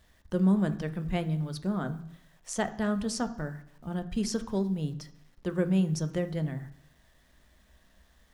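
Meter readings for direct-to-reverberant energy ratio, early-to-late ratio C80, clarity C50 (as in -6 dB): 9.0 dB, 17.5 dB, 14.5 dB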